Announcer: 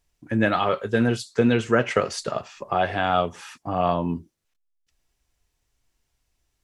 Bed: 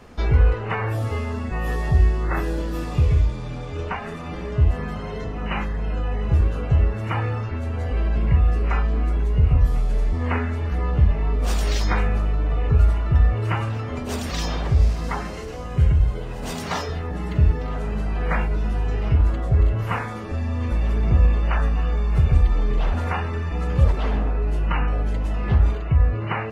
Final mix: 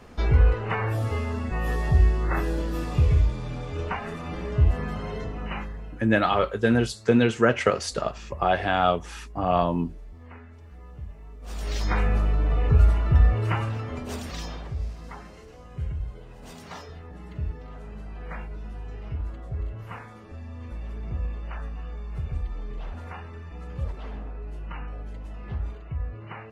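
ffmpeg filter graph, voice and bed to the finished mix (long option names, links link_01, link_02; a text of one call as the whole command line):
ffmpeg -i stem1.wav -i stem2.wav -filter_complex "[0:a]adelay=5700,volume=0dB[link_01];[1:a]volume=19dB,afade=type=out:start_time=5.1:duration=0.94:silence=0.1,afade=type=in:start_time=11.41:duration=0.72:silence=0.0891251,afade=type=out:start_time=13.28:duration=1.46:silence=0.223872[link_02];[link_01][link_02]amix=inputs=2:normalize=0" out.wav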